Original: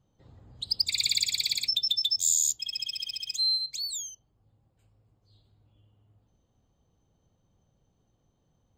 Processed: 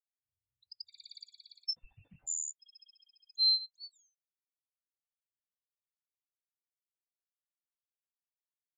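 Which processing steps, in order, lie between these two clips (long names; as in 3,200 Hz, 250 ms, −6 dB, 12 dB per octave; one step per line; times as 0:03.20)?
0:01.76–0:02.27: linear delta modulator 16 kbit/s, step −30 dBFS
every bin expanded away from the loudest bin 2.5 to 1
level −7 dB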